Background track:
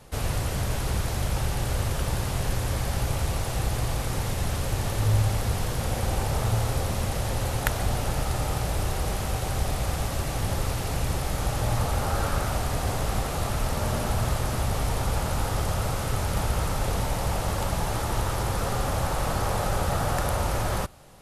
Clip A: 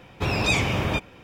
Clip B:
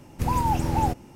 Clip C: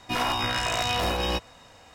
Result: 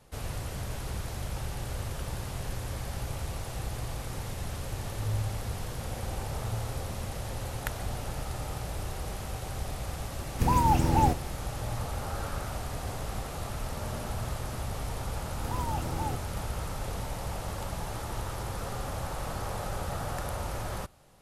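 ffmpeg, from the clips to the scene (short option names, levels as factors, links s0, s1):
-filter_complex "[2:a]asplit=2[s0][s1];[0:a]volume=0.376[s2];[s0]atrim=end=1.15,asetpts=PTS-STARTPTS,afade=t=in:d=0.004:c=hsin,afade=t=out:st=1.146:d=0.004:c=hsin,adelay=10200[s3];[s1]atrim=end=1.15,asetpts=PTS-STARTPTS,volume=0.282,afade=t=in:d=0.004:c=hsin,afade=t=out:st=1.146:d=0.004:c=hsin,adelay=15230[s4];[s2][s3][s4]amix=inputs=3:normalize=0"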